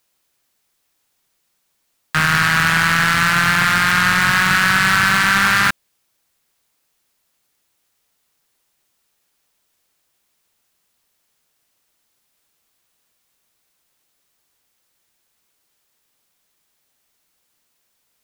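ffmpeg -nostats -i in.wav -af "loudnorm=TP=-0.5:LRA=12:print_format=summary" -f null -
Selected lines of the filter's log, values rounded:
Input Integrated:    -14.0 LUFS
Input True Peak:      -6.1 dBTP
Input LRA:             5.5 LU
Input Threshold:     -31.3 LUFS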